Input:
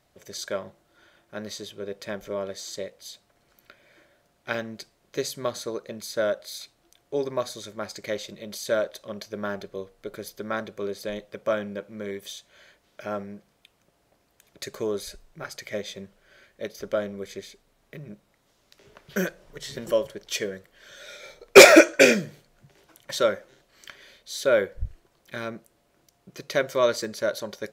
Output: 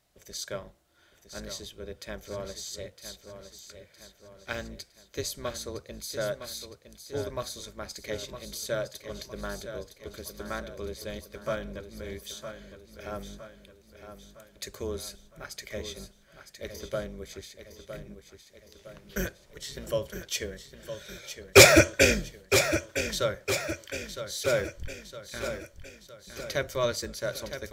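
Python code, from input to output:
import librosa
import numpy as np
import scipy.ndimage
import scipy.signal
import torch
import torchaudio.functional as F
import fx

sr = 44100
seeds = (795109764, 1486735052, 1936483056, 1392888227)

p1 = fx.octave_divider(x, sr, octaves=2, level_db=0.0)
p2 = fx.high_shelf(p1, sr, hz=3000.0, db=7.5)
p3 = p2 + fx.echo_feedback(p2, sr, ms=961, feedback_pct=50, wet_db=-9.5, dry=0)
y = p3 * librosa.db_to_amplitude(-7.0)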